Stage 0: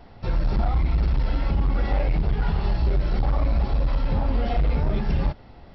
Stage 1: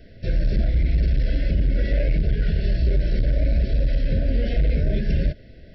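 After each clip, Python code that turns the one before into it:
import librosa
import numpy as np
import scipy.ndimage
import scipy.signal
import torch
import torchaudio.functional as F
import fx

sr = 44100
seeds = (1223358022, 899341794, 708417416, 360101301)

y = scipy.signal.sosfilt(scipy.signal.cheby1(5, 1.0, [660.0, 1500.0], 'bandstop', fs=sr, output='sos'), x)
y = y * 10.0 ** (2.0 / 20.0)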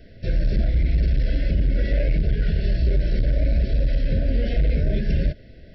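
y = x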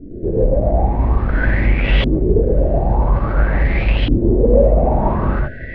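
y = np.clip(10.0 ** (27.0 / 20.0) * x, -1.0, 1.0) / 10.0 ** (27.0 / 20.0)
y = fx.rev_gated(y, sr, seeds[0], gate_ms=170, shape='rising', drr_db=-6.0)
y = fx.filter_lfo_lowpass(y, sr, shape='saw_up', hz=0.49, low_hz=290.0, high_hz=3200.0, q=7.7)
y = y * 10.0 ** (7.0 / 20.0)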